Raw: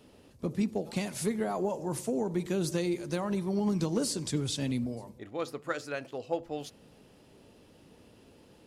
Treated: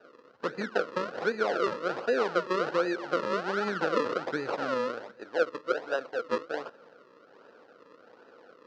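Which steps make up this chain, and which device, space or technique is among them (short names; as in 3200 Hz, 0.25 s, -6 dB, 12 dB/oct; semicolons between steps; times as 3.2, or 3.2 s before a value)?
circuit-bent sampling toy (decimation with a swept rate 40×, swing 100% 1.3 Hz; speaker cabinet 420–4600 Hz, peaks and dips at 500 Hz +8 dB, 1400 Hz +10 dB, 2200 Hz -7 dB, 3400 Hz -6 dB); gain +3.5 dB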